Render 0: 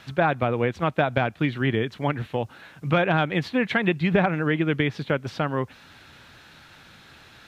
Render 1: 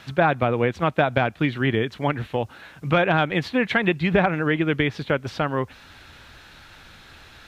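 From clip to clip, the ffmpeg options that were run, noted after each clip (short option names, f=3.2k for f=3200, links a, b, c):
-af "asubboost=boost=4.5:cutoff=63,volume=2.5dB"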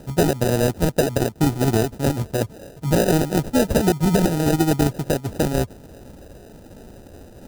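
-af "acrusher=samples=40:mix=1:aa=0.000001,equalizer=f=2.1k:w=0.57:g=-8.5,alimiter=limit=-12.5dB:level=0:latency=1:release=147,volume=5.5dB"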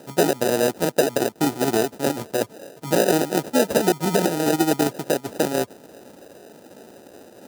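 -af "highpass=290,volume=1.5dB"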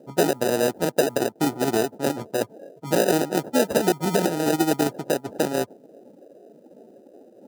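-af "afftdn=nr=18:nf=-40,volume=-1.5dB"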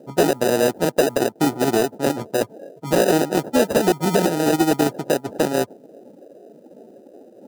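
-af "asoftclip=type=hard:threshold=-12dB,volume=4dB"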